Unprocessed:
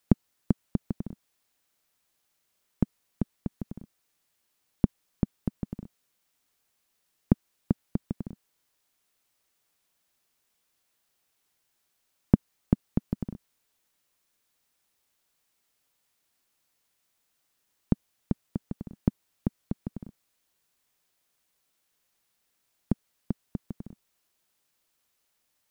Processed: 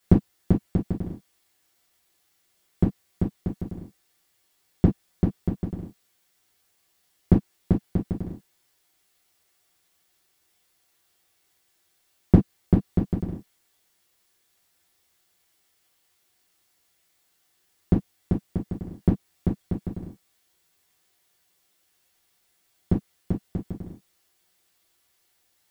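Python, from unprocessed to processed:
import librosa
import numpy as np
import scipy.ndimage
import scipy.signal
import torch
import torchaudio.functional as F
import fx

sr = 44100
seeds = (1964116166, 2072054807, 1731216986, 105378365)

y = fx.rev_gated(x, sr, seeds[0], gate_ms=80, shape='falling', drr_db=-5.5)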